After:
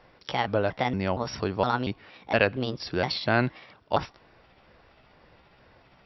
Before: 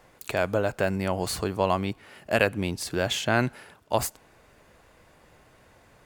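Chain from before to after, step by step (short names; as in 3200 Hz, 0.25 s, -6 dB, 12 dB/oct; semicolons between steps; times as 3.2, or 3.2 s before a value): trilling pitch shifter +4.5 st, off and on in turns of 0.233 s; brick-wall FIR low-pass 5700 Hz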